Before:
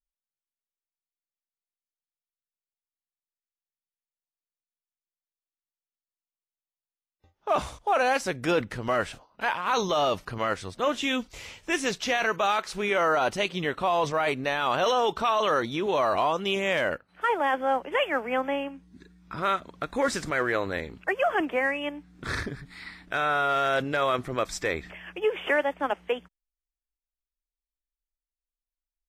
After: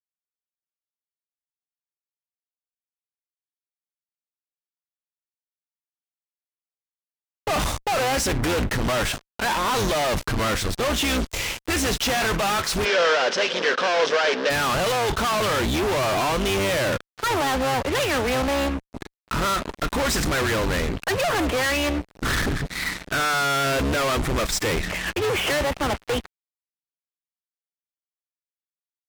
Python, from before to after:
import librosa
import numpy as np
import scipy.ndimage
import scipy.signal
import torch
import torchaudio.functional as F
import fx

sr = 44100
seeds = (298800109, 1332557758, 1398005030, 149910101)

y = fx.octave_divider(x, sr, octaves=2, level_db=-1.0)
y = fx.fuzz(y, sr, gain_db=44.0, gate_db=-46.0)
y = fx.cabinet(y, sr, low_hz=260.0, low_slope=24, high_hz=5900.0, hz=(310.0, 500.0, 770.0, 1600.0, 3100.0, 5400.0), db=(-8, 9, -3, 8, 4, 4), at=(12.84, 14.49), fade=0.02)
y = y * librosa.db_to_amplitude(-8.0)